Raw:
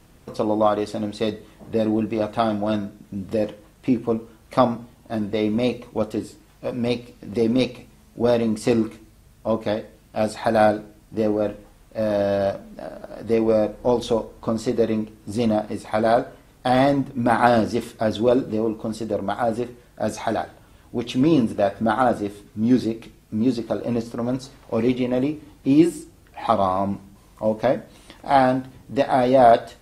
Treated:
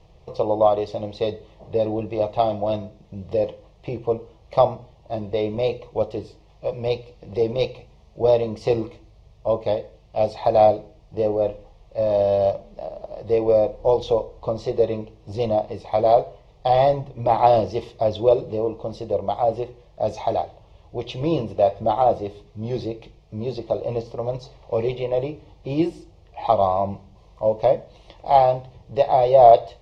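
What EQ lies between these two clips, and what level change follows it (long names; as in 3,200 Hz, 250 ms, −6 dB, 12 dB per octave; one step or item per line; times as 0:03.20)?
high-frequency loss of the air 150 metres
parametric band 8,200 Hz −8.5 dB 0.37 octaves
phaser with its sweep stopped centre 620 Hz, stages 4
+3.5 dB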